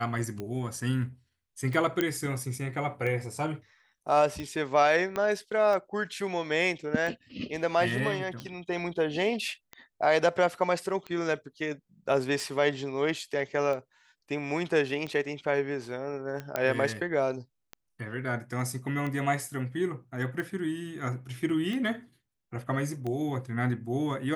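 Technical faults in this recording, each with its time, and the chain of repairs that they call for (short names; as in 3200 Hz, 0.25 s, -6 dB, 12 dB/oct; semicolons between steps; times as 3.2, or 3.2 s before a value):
tick 45 rpm -23 dBFS
2.01 pop -13 dBFS
5.16 pop -17 dBFS
16.56 pop -14 dBFS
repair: de-click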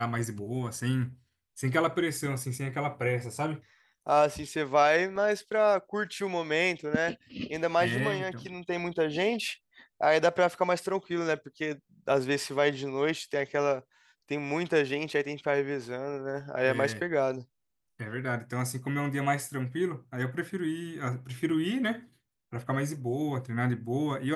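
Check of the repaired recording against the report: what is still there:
5.16 pop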